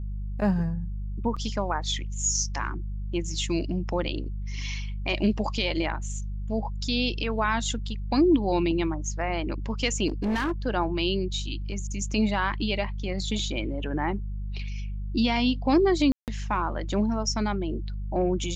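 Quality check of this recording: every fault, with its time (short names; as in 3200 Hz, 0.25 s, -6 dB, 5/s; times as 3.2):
hum 50 Hz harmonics 4 -32 dBFS
1.36–1.37 gap 5.7 ms
10.07–10.52 clipped -23 dBFS
16.12–16.28 gap 0.158 s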